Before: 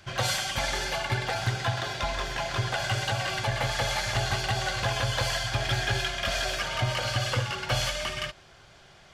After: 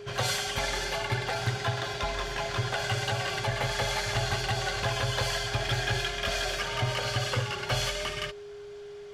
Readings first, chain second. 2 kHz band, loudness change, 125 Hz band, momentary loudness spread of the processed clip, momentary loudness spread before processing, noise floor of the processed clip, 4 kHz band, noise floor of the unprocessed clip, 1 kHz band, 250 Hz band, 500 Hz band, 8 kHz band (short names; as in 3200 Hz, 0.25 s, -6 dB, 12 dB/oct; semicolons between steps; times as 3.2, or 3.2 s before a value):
-1.5 dB, -1.5 dB, -1.5 dB, 4 LU, 3 LU, -43 dBFS, -1.5 dB, -54 dBFS, -1.5 dB, -1.5 dB, +0.5 dB, -1.5 dB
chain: whine 410 Hz -40 dBFS; pre-echo 0.1 s -17 dB; gain -1.5 dB